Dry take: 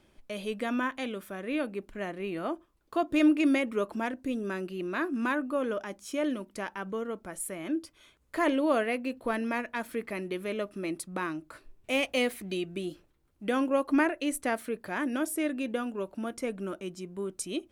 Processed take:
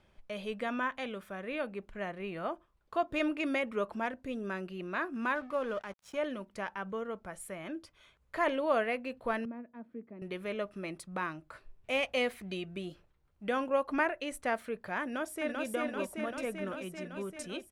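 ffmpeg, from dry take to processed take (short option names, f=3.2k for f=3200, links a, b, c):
-filter_complex "[0:a]asettb=1/sr,asplit=3[a][b][c];[a]atrim=end=5.354[d];[b]atrim=start=5.35:end=6.17,asetpts=PTS-STARTPTS,afade=t=in:d=0.004:c=qsin,afade=t=out:st=0.816:d=0.004:c=qsin,aeval=exprs='sgn(val(0))*max(abs(val(0))-0.00422,0)':c=same[e];[c]atrim=start=6.166[f];[d][e]acrossfade=d=0.004:c1=hsin:c2=qsin[g];[g][f]acrossfade=d=0.004:c1=qsin:c2=hsin,asettb=1/sr,asplit=3[h][i][j];[h]atrim=end=9.454[k];[i]atrim=start=9.45:end=10.22,asetpts=PTS-STARTPTS,afade=t=in:d=0.004:c=qsin,afade=t=out:st=0.766:d=0.004:c=qsin,bandpass=f=260:t=q:w=2.5[l];[j]atrim=start=10.216[m];[k][l]acrossfade=d=0.004:c1=hsin:c2=qsin[n];[n][m]acrossfade=d=0.004:c1=qsin:c2=hsin,asplit=2[o][p];[p]afade=t=in:st=15.02:d=0.01,afade=t=out:st=15.67:d=0.01,aecho=0:1:390|780|1170|1560|1950|2340|2730|3120|3510|3900|4290|4680:0.794328|0.595746|0.44681|0.335107|0.25133|0.188498|0.141373|0.10603|0.0795225|0.0596419|0.0447314|0.0335486[q];[o][q]amix=inputs=2:normalize=0,lowpass=f=2.8k:p=1,equalizer=f=300:w=1.9:g=-11"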